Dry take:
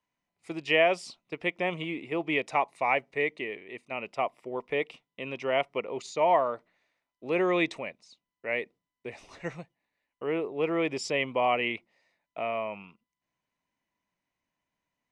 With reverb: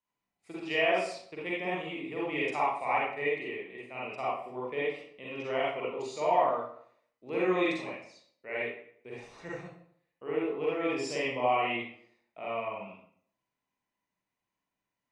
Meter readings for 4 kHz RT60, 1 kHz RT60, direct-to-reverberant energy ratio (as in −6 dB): 0.45 s, 0.60 s, −7.0 dB